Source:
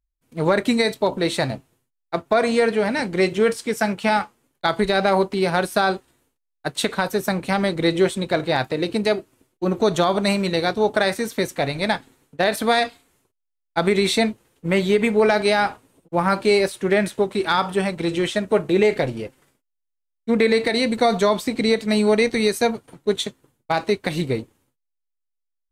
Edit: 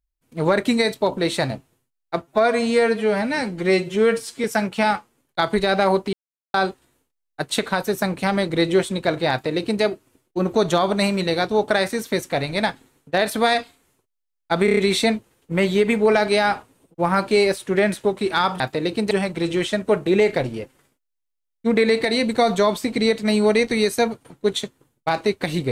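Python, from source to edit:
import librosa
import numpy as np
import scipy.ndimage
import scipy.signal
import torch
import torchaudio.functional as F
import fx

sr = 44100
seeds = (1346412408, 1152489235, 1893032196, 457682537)

y = fx.edit(x, sr, fx.stretch_span(start_s=2.22, length_s=1.48, factor=1.5),
    fx.silence(start_s=5.39, length_s=0.41),
    fx.duplicate(start_s=8.57, length_s=0.51, to_s=17.74),
    fx.stutter(start_s=13.91, slice_s=0.03, count=5), tone=tone)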